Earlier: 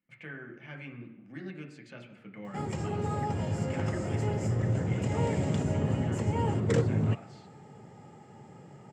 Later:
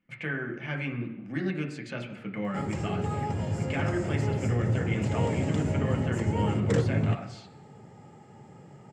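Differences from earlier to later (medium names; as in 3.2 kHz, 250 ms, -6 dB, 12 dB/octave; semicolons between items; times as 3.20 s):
speech +10.5 dB; master: add bass shelf 63 Hz +6.5 dB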